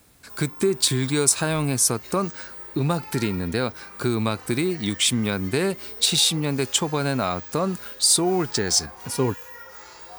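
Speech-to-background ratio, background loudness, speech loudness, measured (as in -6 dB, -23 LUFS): 15.5 dB, -38.0 LUFS, -22.5 LUFS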